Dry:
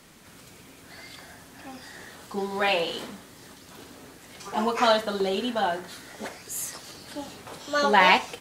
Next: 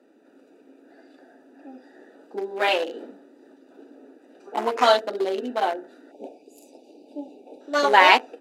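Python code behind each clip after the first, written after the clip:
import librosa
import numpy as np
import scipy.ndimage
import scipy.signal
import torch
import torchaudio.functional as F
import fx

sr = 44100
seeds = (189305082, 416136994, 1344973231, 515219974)

y = fx.wiener(x, sr, points=41)
y = fx.spec_box(y, sr, start_s=6.11, length_s=1.5, low_hz=920.0, high_hz=2200.0, gain_db=-26)
y = scipy.signal.sosfilt(scipy.signal.ellip(4, 1.0, 60, 270.0, 'highpass', fs=sr, output='sos'), y)
y = F.gain(torch.from_numpy(y), 4.5).numpy()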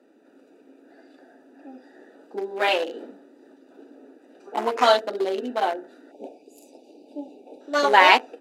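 y = x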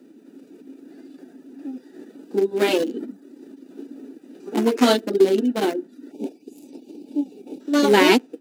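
y = fx.envelope_flatten(x, sr, power=0.6)
y = fx.low_shelf_res(y, sr, hz=550.0, db=12.0, q=1.5)
y = fx.dereverb_blind(y, sr, rt60_s=0.54)
y = F.gain(torch.from_numpy(y), -2.5).numpy()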